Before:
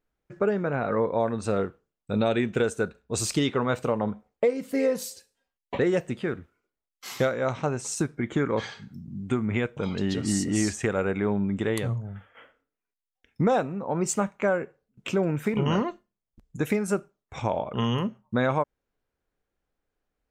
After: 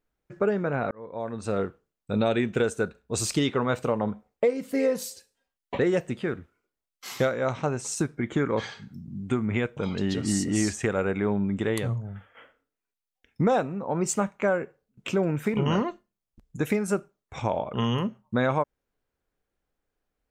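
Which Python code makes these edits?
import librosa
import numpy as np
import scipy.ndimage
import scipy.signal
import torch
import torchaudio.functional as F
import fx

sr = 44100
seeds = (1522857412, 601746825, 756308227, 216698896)

y = fx.edit(x, sr, fx.fade_in_span(start_s=0.91, length_s=0.76), tone=tone)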